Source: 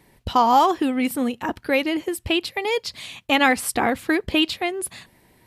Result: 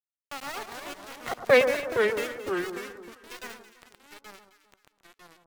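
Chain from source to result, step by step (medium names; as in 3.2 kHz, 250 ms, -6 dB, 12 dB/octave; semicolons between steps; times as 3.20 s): comb filter that takes the minimum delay 1.7 ms; Doppler pass-by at 1.51 s, 41 m/s, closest 3.3 m; high-pass 110 Hz 24 dB/octave; treble shelf 4.3 kHz -7.5 dB; in parallel at -2.5 dB: gain riding within 4 dB 0.5 s; on the sum: small samples zeroed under -33 dBFS; echo whose repeats swap between lows and highs 111 ms, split 1.5 kHz, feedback 57%, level -8 dB; ever faster or slower copies 181 ms, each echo -3 st, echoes 2, each echo -6 dB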